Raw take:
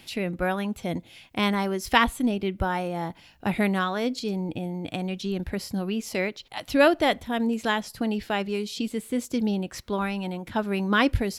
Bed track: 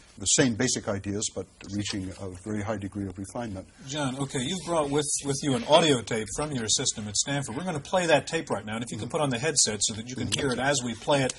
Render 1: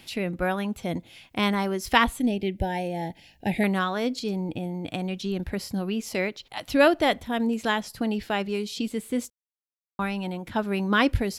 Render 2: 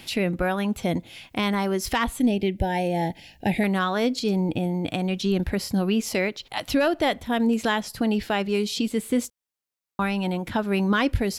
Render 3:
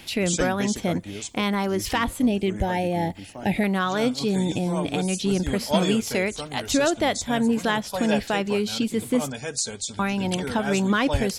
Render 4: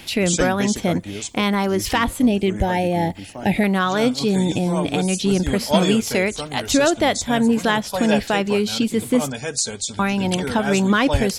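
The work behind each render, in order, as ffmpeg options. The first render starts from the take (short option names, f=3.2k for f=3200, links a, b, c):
-filter_complex "[0:a]asettb=1/sr,asplit=3[a][b][c];[a]atrim=end=2.204[d];[b]atrim=start=2.2:end=3.64,asetpts=PTS-STARTPTS,afade=t=in:d=0.004:c=qsin,afade=t=out:st=1.436:d=0.004:c=qsin,asuperstop=centerf=1200:order=8:qfactor=1.6[e];[c]atrim=start=3.636[f];[d][e]acrossfade=d=0.004:c1=hsin:c2=qsin[g];[g][f]acrossfade=d=0.004:c1=qsin:c2=hsin,asplit=3[h][i][j];[h]atrim=end=9.3,asetpts=PTS-STARTPTS,afade=t=out:st=9.296:d=0.004:c=hsin[k];[i]atrim=start=9.3:end=9.99,asetpts=PTS-STARTPTS,volume=0[l];[j]atrim=start=9.99,asetpts=PTS-STARTPTS,afade=t=in:d=0.004:c=hsin[m];[k][l][m]concat=n=3:v=0:a=1"
-af "acontrast=51,alimiter=limit=-13dB:level=0:latency=1:release=326"
-filter_complex "[1:a]volume=-5dB[a];[0:a][a]amix=inputs=2:normalize=0"
-af "volume=4.5dB"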